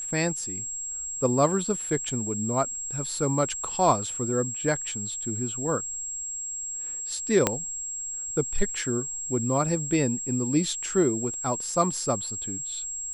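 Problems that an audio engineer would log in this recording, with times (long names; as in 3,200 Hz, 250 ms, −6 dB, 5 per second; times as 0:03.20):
whistle 7,600 Hz −31 dBFS
0:07.47: click −5 dBFS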